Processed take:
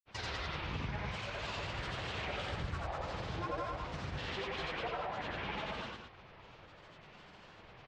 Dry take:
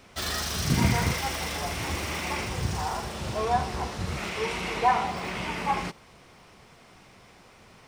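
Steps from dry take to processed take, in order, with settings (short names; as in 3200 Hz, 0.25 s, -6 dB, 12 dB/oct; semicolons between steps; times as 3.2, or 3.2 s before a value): LPF 3700 Hz 24 dB/oct; compressor 4:1, threshold -35 dBFS, peak gain reduction 15.5 dB; grains, pitch spread up and down by 7 st; bell 250 Hz -6.5 dB 0.61 oct; loudspeakers at several distances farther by 30 m -1 dB, 69 m -6 dB; gain -3.5 dB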